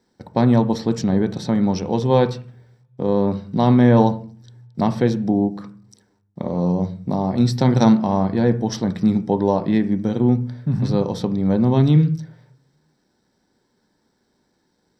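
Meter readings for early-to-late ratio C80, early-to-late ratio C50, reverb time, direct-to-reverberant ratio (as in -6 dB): 20.0 dB, 14.5 dB, 0.45 s, 8.0 dB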